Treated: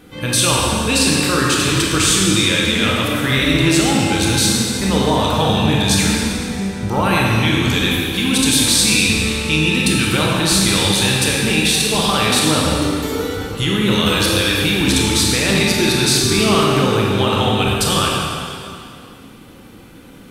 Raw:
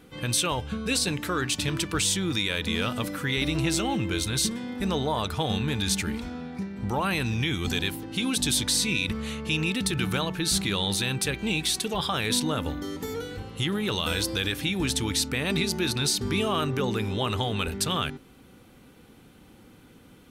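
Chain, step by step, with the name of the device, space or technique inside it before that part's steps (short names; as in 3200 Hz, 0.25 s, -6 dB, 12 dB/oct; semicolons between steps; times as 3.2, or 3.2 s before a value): stairwell (reverb RT60 2.4 s, pre-delay 21 ms, DRR -3.5 dB); gain +7 dB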